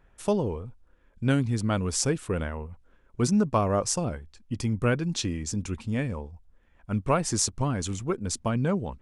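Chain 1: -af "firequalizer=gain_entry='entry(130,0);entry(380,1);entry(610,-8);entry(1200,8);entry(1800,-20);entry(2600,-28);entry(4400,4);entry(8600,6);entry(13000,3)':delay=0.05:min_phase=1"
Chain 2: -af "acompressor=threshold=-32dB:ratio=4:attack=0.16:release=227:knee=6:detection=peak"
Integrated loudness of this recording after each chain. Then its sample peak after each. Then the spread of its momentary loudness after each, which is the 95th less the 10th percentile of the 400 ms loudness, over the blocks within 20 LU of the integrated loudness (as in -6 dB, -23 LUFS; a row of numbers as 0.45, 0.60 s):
-26.5, -38.0 LUFS; -3.5, -24.0 dBFS; 15, 8 LU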